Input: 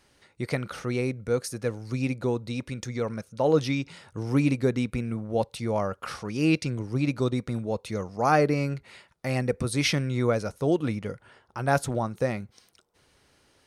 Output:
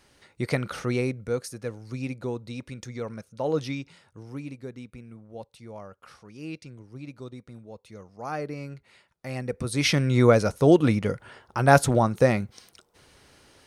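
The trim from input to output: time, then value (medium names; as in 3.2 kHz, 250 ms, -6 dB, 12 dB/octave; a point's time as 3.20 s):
0.90 s +2.5 dB
1.56 s -4.5 dB
3.72 s -4.5 dB
4.43 s -14.5 dB
7.76 s -14.5 dB
9.43 s -5.5 dB
10.19 s +7 dB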